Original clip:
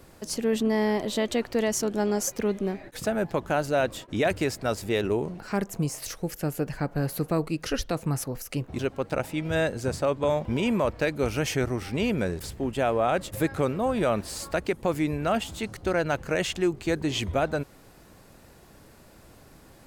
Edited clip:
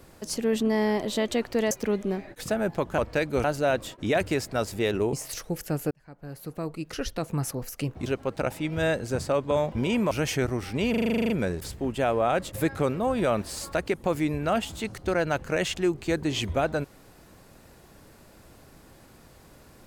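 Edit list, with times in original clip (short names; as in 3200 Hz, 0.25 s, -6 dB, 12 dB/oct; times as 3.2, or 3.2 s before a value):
1.71–2.27 cut
5.23–5.86 cut
6.64–8.27 fade in
10.84–11.3 move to 3.54
12.09 stutter 0.04 s, 11 plays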